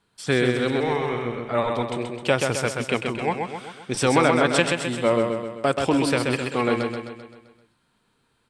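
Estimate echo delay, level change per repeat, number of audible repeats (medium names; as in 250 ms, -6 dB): 130 ms, -5.5 dB, 6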